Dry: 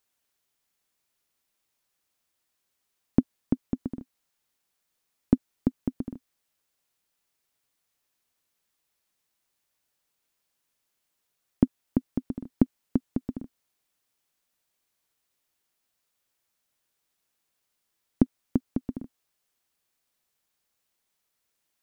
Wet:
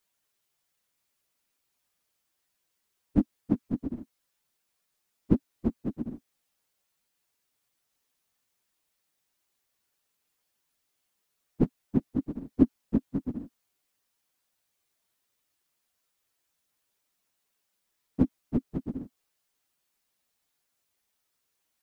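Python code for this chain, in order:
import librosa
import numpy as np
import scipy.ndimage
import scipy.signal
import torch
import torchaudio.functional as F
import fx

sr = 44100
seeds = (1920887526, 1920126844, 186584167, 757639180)

y = fx.phase_scramble(x, sr, seeds[0], window_ms=50)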